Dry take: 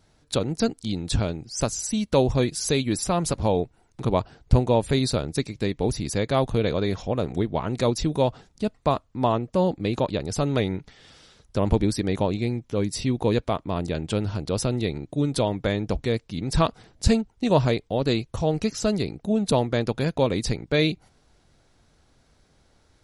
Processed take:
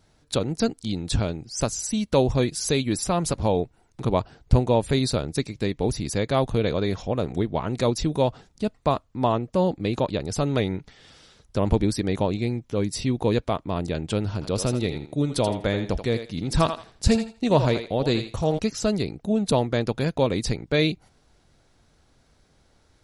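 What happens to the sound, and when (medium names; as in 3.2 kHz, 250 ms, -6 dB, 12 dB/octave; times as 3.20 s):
14.33–18.59 s: thinning echo 82 ms, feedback 23%, level -7.5 dB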